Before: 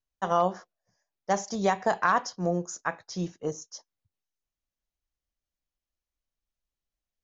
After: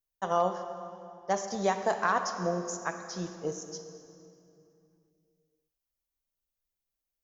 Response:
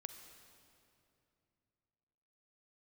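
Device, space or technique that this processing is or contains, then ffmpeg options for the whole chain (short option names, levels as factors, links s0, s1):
swimming-pool hall: -filter_complex "[0:a]aemphasis=mode=production:type=75fm,asettb=1/sr,asplit=3[s0][s1][s2];[s0]atrim=end=0.544[s3];[s1]atrim=start=0.54:end=1.58,asetpts=PTS-STARTPTS,afade=t=in:d=0.004:c=qsin,afade=t=out:st=1.036:d=0.004:c=qsin,lowpass=6400[s4];[s2]atrim=start=1.576[s5];[s3][s4]acrossfade=d=0.004:c1=hsin:c2=qsin[s6];[s6][s5]acrossfade=d=0.004:c1=qsin:c2=hsin,equalizer=f=520:t=o:w=1.6:g=3.5[s7];[1:a]atrim=start_sample=2205[s8];[s7][s8]afir=irnorm=-1:irlink=0,highshelf=f=4000:g=-7"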